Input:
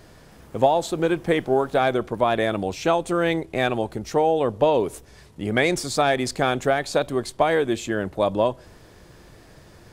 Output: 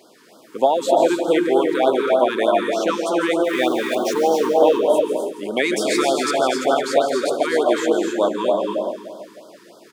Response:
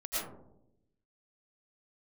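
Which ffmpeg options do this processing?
-filter_complex "[0:a]asettb=1/sr,asplit=3[link_01][link_02][link_03];[link_01]atrim=end=3.444[link_04];[link_02]atrim=start=3.44:end=4.52,asetpts=PTS-STARTPTS,afade=type=in:duration=0.004:curve=qsin,afade=type=out:start_time=1.076:duration=0.004:curve=qsin,aeval=exprs='val(0)+0.5*0.0299*sgn(val(0))':channel_layout=same[link_05];[link_03]atrim=start=4.516[link_06];[link_04][link_05]acrossfade=duration=0.004:curve1=hsin:curve2=qsin[link_07];[link_07][link_06]acrossfade=duration=0.004:curve1=qsin:curve2=hsin,highpass=frequency=250:width=0.5412,highpass=frequency=250:width=1.3066,aecho=1:1:167|334|501|668|835|1002:0.299|0.167|0.0936|0.0524|0.0294|0.0164,asplit=2[link_08][link_09];[1:a]atrim=start_sample=2205,afade=type=out:start_time=0.39:duration=0.01,atrim=end_sample=17640,adelay=146[link_10];[link_09][link_10]afir=irnorm=-1:irlink=0,volume=-6dB[link_11];[link_08][link_11]amix=inputs=2:normalize=0,afftfilt=real='re*(1-between(b*sr/1024,610*pow(2200/610,0.5+0.5*sin(2*PI*3.3*pts/sr))/1.41,610*pow(2200/610,0.5+0.5*sin(2*PI*3.3*pts/sr))*1.41))':imag='im*(1-between(b*sr/1024,610*pow(2200/610,0.5+0.5*sin(2*PI*3.3*pts/sr))/1.41,610*pow(2200/610,0.5+0.5*sin(2*PI*3.3*pts/sr))*1.41))':win_size=1024:overlap=0.75,volume=1.5dB"

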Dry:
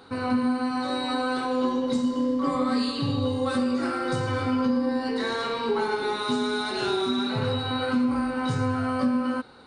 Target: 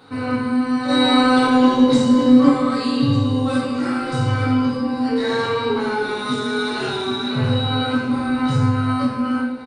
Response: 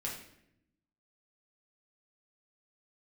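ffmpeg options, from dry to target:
-filter_complex "[0:a]asplit=3[link_01][link_02][link_03];[link_01]afade=type=out:start_time=0.88:duration=0.02[link_04];[link_02]acontrast=81,afade=type=in:start_time=0.88:duration=0.02,afade=type=out:start_time=2.48:duration=0.02[link_05];[link_03]afade=type=in:start_time=2.48:duration=0.02[link_06];[link_04][link_05][link_06]amix=inputs=3:normalize=0,aecho=1:1:1194:0.158[link_07];[1:a]atrim=start_sample=2205[link_08];[link_07][link_08]afir=irnorm=-1:irlink=0,volume=3.5dB"

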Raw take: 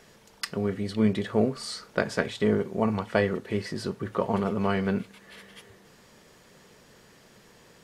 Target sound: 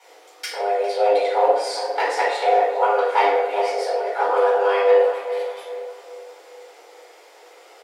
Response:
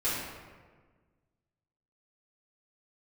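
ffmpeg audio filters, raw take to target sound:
-filter_complex "[0:a]aeval=exprs='clip(val(0),-1,0.0944)':channel_layout=same,afreqshift=300,asplit=2[link_01][link_02];[link_02]adelay=404,lowpass=frequency=1900:poles=1,volume=-10dB,asplit=2[link_03][link_04];[link_04]adelay=404,lowpass=frequency=1900:poles=1,volume=0.47,asplit=2[link_05][link_06];[link_06]adelay=404,lowpass=frequency=1900:poles=1,volume=0.47,asplit=2[link_07][link_08];[link_08]adelay=404,lowpass=frequency=1900:poles=1,volume=0.47,asplit=2[link_09][link_10];[link_10]adelay=404,lowpass=frequency=1900:poles=1,volume=0.47[link_11];[link_01][link_03][link_05][link_07][link_09][link_11]amix=inputs=6:normalize=0[link_12];[1:a]atrim=start_sample=2205,asetrate=83790,aresample=44100[link_13];[link_12][link_13]afir=irnorm=-1:irlink=0,volume=3dB"

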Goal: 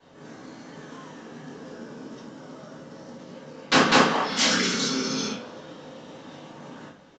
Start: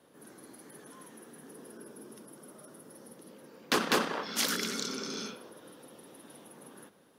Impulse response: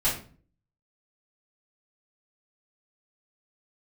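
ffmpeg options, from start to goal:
-filter_complex "[1:a]atrim=start_sample=2205,atrim=end_sample=4410[link_01];[0:a][link_01]afir=irnorm=-1:irlink=0,acrusher=bits=4:mode=log:mix=0:aa=0.000001,aresample=16000,aresample=44100,asplit=2[link_02][link_03];[link_03]adelay=370,highpass=300,lowpass=3400,asoftclip=type=hard:threshold=-14.5dB,volume=-23dB[link_04];[link_02][link_04]amix=inputs=2:normalize=0"

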